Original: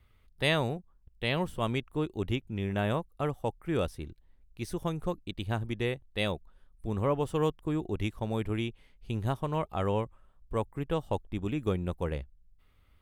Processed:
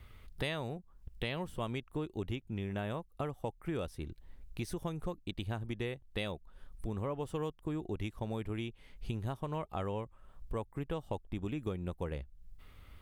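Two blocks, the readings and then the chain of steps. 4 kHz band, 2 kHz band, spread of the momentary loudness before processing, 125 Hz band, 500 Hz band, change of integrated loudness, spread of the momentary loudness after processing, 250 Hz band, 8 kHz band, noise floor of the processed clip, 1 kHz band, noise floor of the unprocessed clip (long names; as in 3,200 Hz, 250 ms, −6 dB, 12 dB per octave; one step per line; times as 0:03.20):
−7.5 dB, −8.0 dB, 8 LU, −6.0 dB, −7.5 dB, −7.0 dB, 8 LU, −6.0 dB, −5.5 dB, −61 dBFS, −7.5 dB, −63 dBFS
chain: downward compressor 4 to 1, threshold −47 dBFS, peak gain reduction 20.5 dB
level +9.5 dB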